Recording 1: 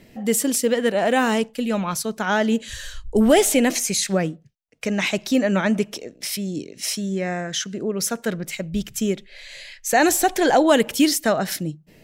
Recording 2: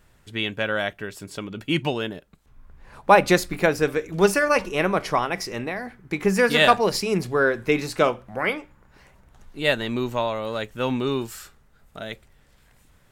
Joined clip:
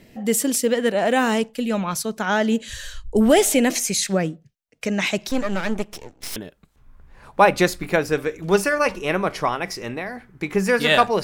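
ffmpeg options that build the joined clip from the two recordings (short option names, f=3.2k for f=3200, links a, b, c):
-filter_complex "[0:a]asettb=1/sr,asplit=3[a][b][c];[a]atrim=end=5.294[d];[b]atrim=start=5.29:end=6.36,asetpts=PTS-STARTPTS,afade=t=in:d=0.004:c=qsin,afade=t=out:st=1.066:d=0.004:c=qsin,aeval=exprs='max(val(0),0)':c=same[e];[c]atrim=start=6.356[f];[d][e]acrossfade=d=0.004:c1=hsin:c2=qsin[g];[g][f]acrossfade=d=0.004:c1=qsin:c2=hsin,apad=whole_dur=11.23,atrim=end=11.23,atrim=end=6.362[h];[1:a]atrim=start=2.058:end=6.93[i];[h][i]acrossfade=d=0.004:c1=hsin:c2=hsin"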